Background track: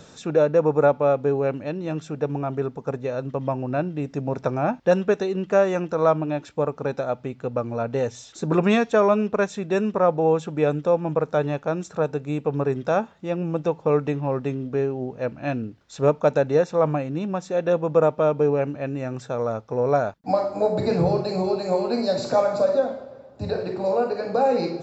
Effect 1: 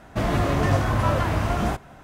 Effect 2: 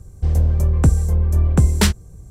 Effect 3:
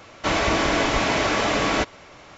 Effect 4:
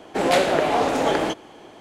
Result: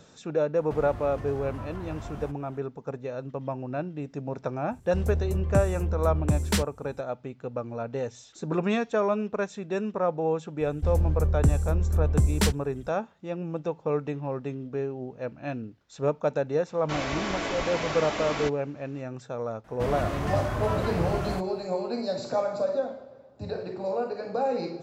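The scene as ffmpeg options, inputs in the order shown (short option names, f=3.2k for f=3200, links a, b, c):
-filter_complex "[1:a]asplit=2[a][b];[2:a]asplit=2[c][d];[0:a]volume=-7dB[e];[a]acrossover=split=100|1400[f][g][h];[f]acompressor=threshold=-29dB:ratio=4[i];[g]acompressor=threshold=-32dB:ratio=4[j];[h]acompressor=threshold=-48dB:ratio=4[k];[i][j][k]amix=inputs=3:normalize=0[l];[c]highpass=68[m];[3:a]agate=range=-33dB:threshold=-43dB:ratio=3:release=100:detection=peak[n];[l]atrim=end=2.03,asetpts=PTS-STARTPTS,volume=-9dB,afade=t=in:d=0.004:c=hsin,afade=t=out:st=2.026:d=0.004:c=hsin,adelay=550[o];[m]atrim=end=2.3,asetpts=PTS-STARTPTS,volume=-9dB,afade=t=in:d=0.004:c=hsin,afade=t=out:st=2.296:d=0.004:c=hsin,adelay=4710[p];[d]atrim=end=2.3,asetpts=PTS-STARTPTS,volume=-8dB,afade=t=in:d=0.004:c=hsin,afade=t=out:st=2.296:d=0.004:c=hsin,adelay=10600[q];[n]atrim=end=2.37,asetpts=PTS-STARTPTS,volume=-10dB,afade=t=in:d=0.004:c=hsin,afade=t=out:st=2.366:d=0.004:c=hsin,adelay=16650[r];[b]atrim=end=2.03,asetpts=PTS-STARTPTS,volume=-7.5dB,afade=t=in:d=0.004:c=hsin,afade=t=out:st=2.026:d=0.004:c=hsin,adelay=19640[s];[e][o][p][q][r][s]amix=inputs=6:normalize=0"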